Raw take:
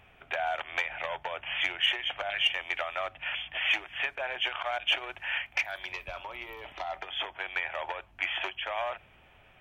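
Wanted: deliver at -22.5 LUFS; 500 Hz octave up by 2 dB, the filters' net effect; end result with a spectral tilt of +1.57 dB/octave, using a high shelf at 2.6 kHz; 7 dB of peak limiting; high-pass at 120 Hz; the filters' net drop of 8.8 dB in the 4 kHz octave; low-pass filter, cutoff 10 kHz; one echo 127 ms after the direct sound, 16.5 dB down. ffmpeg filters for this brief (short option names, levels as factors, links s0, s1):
-af "highpass=120,lowpass=10000,equalizer=f=500:t=o:g=3.5,highshelf=f=2600:g=-7,equalizer=f=4000:t=o:g=-8,alimiter=level_in=1.26:limit=0.0631:level=0:latency=1,volume=0.794,aecho=1:1:127:0.15,volume=5.62"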